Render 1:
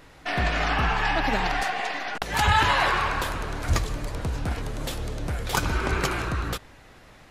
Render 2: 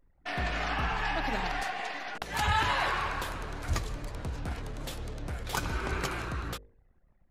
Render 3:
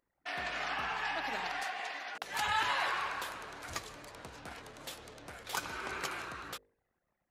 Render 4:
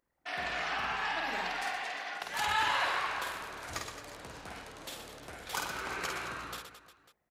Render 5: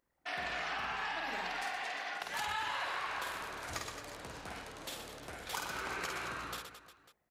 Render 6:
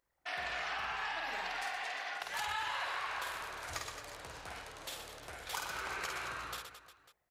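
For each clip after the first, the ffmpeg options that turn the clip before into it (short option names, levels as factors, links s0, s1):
-af "anlmdn=0.1,bandreject=f=51.3:t=h:w=4,bandreject=f=102.6:t=h:w=4,bandreject=f=153.9:t=h:w=4,bandreject=f=205.2:t=h:w=4,bandreject=f=256.5:t=h:w=4,bandreject=f=307.8:t=h:w=4,bandreject=f=359.1:t=h:w=4,bandreject=f=410.4:t=h:w=4,bandreject=f=461.7:t=h:w=4,bandreject=f=513:t=h:w=4,bandreject=f=564.3:t=h:w=4,bandreject=f=615.6:t=h:w=4,volume=0.447"
-af "highpass=f=650:p=1,volume=0.75"
-af "aecho=1:1:50|120|218|355.2|547.3:0.631|0.398|0.251|0.158|0.1"
-af "acompressor=threshold=0.0178:ratio=4"
-af "equalizer=f=230:w=1:g=-9"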